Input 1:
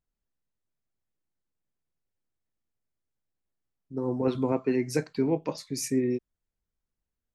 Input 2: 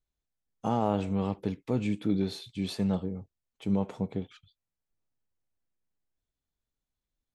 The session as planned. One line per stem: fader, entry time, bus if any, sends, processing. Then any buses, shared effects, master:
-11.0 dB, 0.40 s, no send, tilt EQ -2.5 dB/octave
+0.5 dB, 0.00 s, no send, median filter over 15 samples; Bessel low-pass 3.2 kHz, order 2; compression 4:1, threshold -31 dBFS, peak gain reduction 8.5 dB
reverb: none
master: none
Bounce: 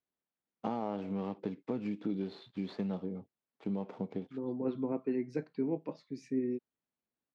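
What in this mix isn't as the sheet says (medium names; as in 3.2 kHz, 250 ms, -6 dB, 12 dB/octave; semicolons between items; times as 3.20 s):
stem 2: missing Bessel low-pass 3.2 kHz, order 2; master: extra Chebyshev band-pass 220–3600 Hz, order 2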